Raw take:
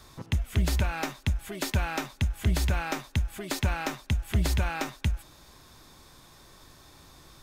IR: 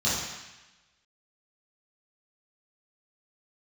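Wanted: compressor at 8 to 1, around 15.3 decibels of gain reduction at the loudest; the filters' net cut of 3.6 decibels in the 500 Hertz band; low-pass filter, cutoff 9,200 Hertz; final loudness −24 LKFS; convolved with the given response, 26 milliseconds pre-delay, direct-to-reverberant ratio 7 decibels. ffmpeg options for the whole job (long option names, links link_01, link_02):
-filter_complex "[0:a]lowpass=9200,equalizer=frequency=500:width_type=o:gain=-5,acompressor=threshold=-37dB:ratio=8,asplit=2[link_01][link_02];[1:a]atrim=start_sample=2205,adelay=26[link_03];[link_02][link_03]afir=irnorm=-1:irlink=0,volume=-19dB[link_04];[link_01][link_04]amix=inputs=2:normalize=0,volume=16dB"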